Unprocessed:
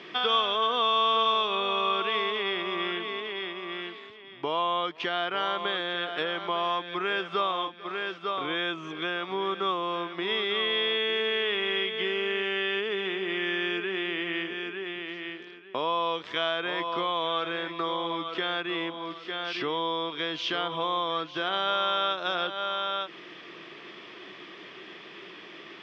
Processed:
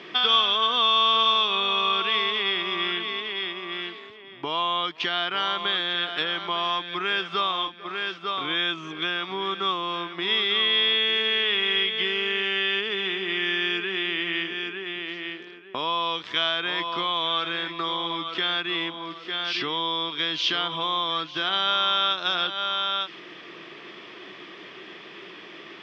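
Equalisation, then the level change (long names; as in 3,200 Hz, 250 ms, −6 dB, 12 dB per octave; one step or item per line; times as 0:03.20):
dynamic equaliser 530 Hz, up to −7 dB, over −45 dBFS, Q 1.4
dynamic equaliser 4,500 Hz, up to +7 dB, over −45 dBFS, Q 0.93
+2.5 dB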